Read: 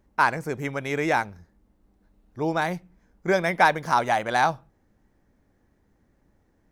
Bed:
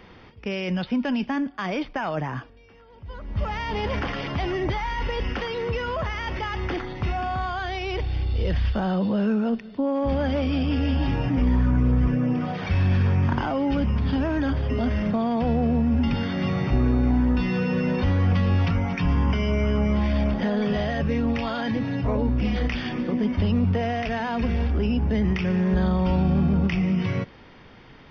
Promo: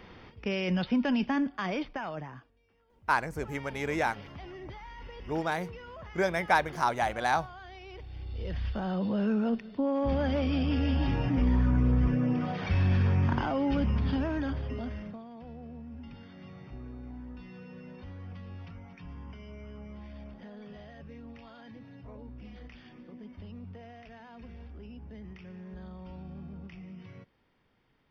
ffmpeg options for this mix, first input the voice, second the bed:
ffmpeg -i stem1.wav -i stem2.wav -filter_complex "[0:a]adelay=2900,volume=-6dB[link_01];[1:a]volume=11dB,afade=type=out:start_time=1.45:duration=0.96:silence=0.16788,afade=type=in:start_time=8.07:duration=1.37:silence=0.211349,afade=type=out:start_time=13.97:duration=1.27:silence=0.11885[link_02];[link_01][link_02]amix=inputs=2:normalize=0" out.wav

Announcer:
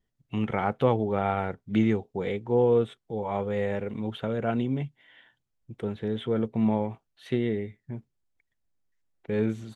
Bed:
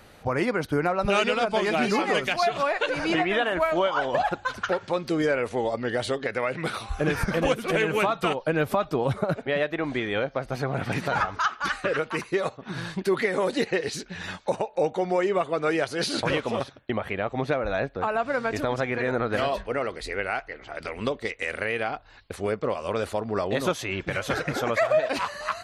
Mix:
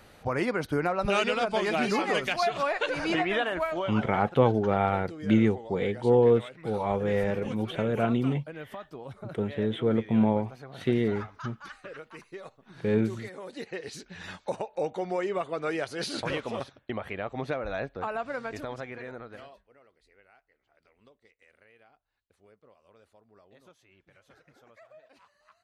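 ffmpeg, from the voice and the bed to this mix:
ffmpeg -i stem1.wav -i stem2.wav -filter_complex "[0:a]adelay=3550,volume=1.5dB[link_01];[1:a]volume=8dB,afade=type=out:start_time=3.36:duration=0.83:silence=0.199526,afade=type=in:start_time=13.44:duration=0.89:silence=0.281838,afade=type=out:start_time=18.02:duration=1.6:silence=0.0501187[link_02];[link_01][link_02]amix=inputs=2:normalize=0" out.wav

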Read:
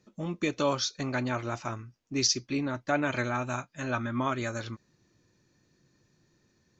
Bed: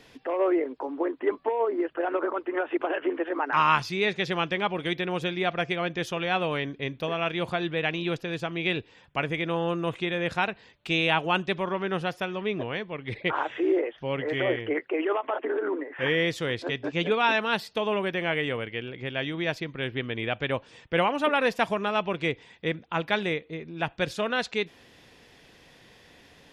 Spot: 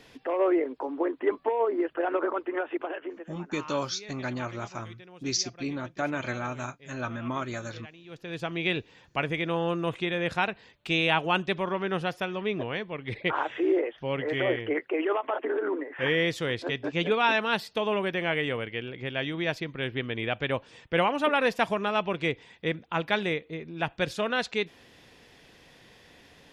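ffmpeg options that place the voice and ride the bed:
ffmpeg -i stem1.wav -i stem2.wav -filter_complex "[0:a]adelay=3100,volume=-2.5dB[link_01];[1:a]volume=20dB,afade=type=out:start_time=2.35:duration=0.98:silence=0.0944061,afade=type=in:start_time=8.08:duration=0.41:silence=0.1[link_02];[link_01][link_02]amix=inputs=2:normalize=0" out.wav

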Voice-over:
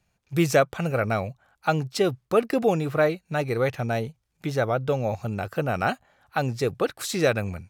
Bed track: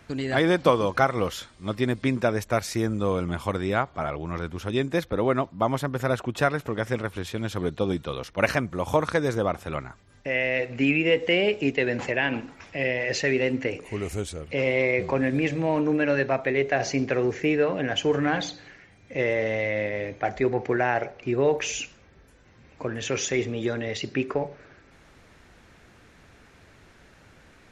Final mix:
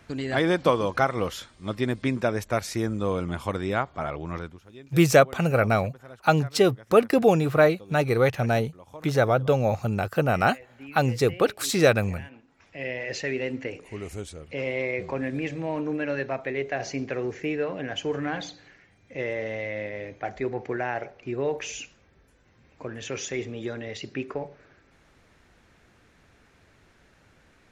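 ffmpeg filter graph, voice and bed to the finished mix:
ffmpeg -i stem1.wav -i stem2.wav -filter_complex "[0:a]adelay=4600,volume=3dB[link_01];[1:a]volume=14dB,afade=type=out:start_time=4.35:duration=0.26:silence=0.105925,afade=type=in:start_time=12.47:duration=0.46:silence=0.16788[link_02];[link_01][link_02]amix=inputs=2:normalize=0" out.wav

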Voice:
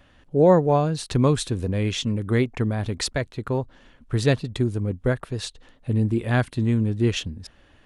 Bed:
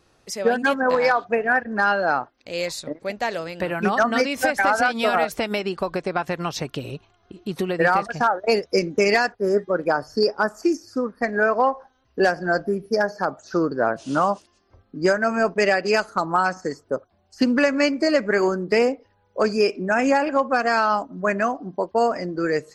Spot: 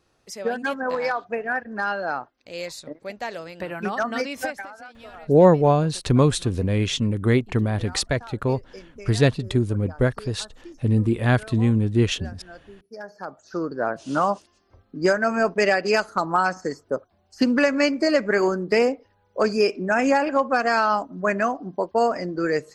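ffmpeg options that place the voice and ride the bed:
ffmpeg -i stem1.wav -i stem2.wav -filter_complex "[0:a]adelay=4950,volume=2dB[link_01];[1:a]volume=16dB,afade=type=out:start_time=4.42:duration=0.26:silence=0.149624,afade=type=in:start_time=12.88:duration=1.47:silence=0.0794328[link_02];[link_01][link_02]amix=inputs=2:normalize=0" out.wav

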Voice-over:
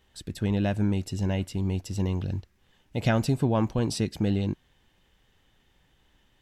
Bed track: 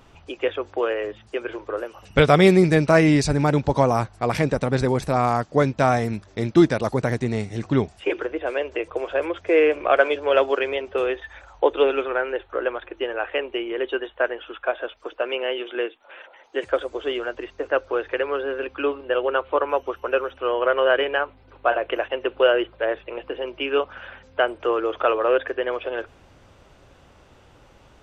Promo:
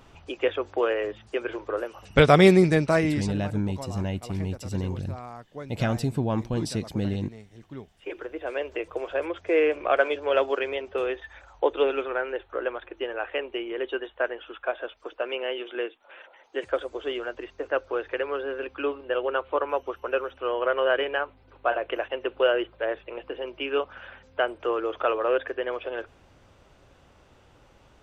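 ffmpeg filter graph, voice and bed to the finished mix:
ffmpeg -i stem1.wav -i stem2.wav -filter_complex "[0:a]adelay=2750,volume=-2dB[link_01];[1:a]volume=14.5dB,afade=type=out:start_time=2.47:duration=0.96:silence=0.112202,afade=type=in:start_time=7.87:duration=0.74:silence=0.16788[link_02];[link_01][link_02]amix=inputs=2:normalize=0" out.wav

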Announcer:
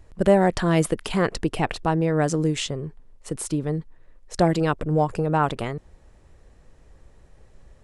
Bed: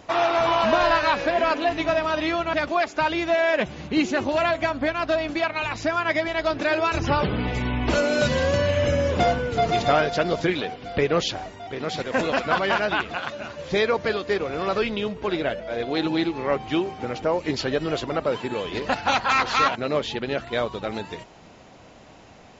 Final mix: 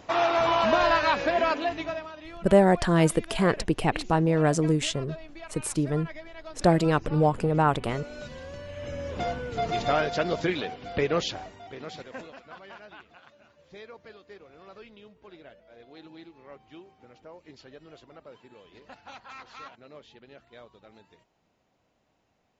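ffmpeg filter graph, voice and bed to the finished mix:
ffmpeg -i stem1.wav -i stem2.wav -filter_complex "[0:a]adelay=2250,volume=-1dB[link_01];[1:a]volume=13dB,afade=type=out:start_time=1.42:duration=0.71:silence=0.141254,afade=type=in:start_time=8.67:duration=1.48:silence=0.16788,afade=type=out:start_time=11.14:duration=1.2:silence=0.1[link_02];[link_01][link_02]amix=inputs=2:normalize=0" out.wav

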